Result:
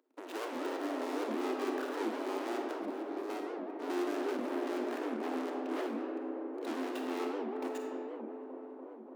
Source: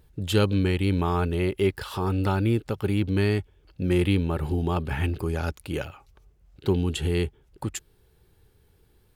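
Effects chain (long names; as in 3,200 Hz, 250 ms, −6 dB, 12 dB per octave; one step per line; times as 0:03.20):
running median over 41 samples
0:02.71–0:03.30: output level in coarse steps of 21 dB
0:04.98–0:05.82: low-pass filter 3,000 Hz
leveller curve on the samples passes 3
soft clipping −34 dBFS, distortion −6 dB
Chebyshev high-pass with heavy ripple 250 Hz, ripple 3 dB
delay with a low-pass on its return 292 ms, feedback 79%, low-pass 730 Hz, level −4 dB
comb and all-pass reverb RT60 2.9 s, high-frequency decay 0.45×, pre-delay 5 ms, DRR 0.5 dB
wow of a warped record 78 rpm, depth 250 cents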